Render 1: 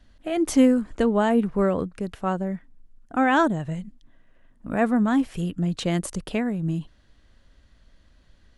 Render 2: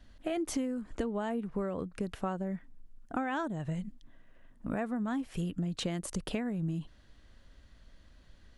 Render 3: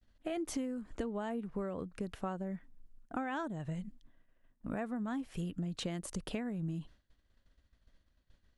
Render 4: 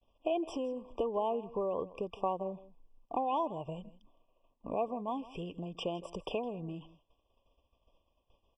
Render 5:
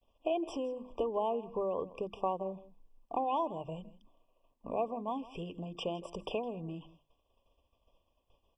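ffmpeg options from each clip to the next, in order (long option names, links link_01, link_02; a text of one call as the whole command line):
ffmpeg -i in.wav -af "acompressor=threshold=-29dB:ratio=16,volume=-1dB" out.wav
ffmpeg -i in.wav -af "agate=range=-33dB:threshold=-47dB:ratio=3:detection=peak,volume=-4dB" out.wav
ffmpeg -i in.wav -af "firequalizer=gain_entry='entry(220,0);entry(430,13);entry(1000,15);entry(9600,-10)':delay=0.05:min_phase=1,aecho=1:1:162:0.119,afftfilt=real='re*eq(mod(floor(b*sr/1024/1200),2),0)':imag='im*eq(mod(floor(b*sr/1024/1200),2),0)':win_size=1024:overlap=0.75,volume=-5.5dB" out.wav
ffmpeg -i in.wav -af "bandreject=frequency=50:width_type=h:width=6,bandreject=frequency=100:width_type=h:width=6,bandreject=frequency=150:width_type=h:width=6,bandreject=frequency=200:width_type=h:width=6,bandreject=frequency=250:width_type=h:width=6,bandreject=frequency=300:width_type=h:width=6,bandreject=frequency=350:width_type=h:width=6" out.wav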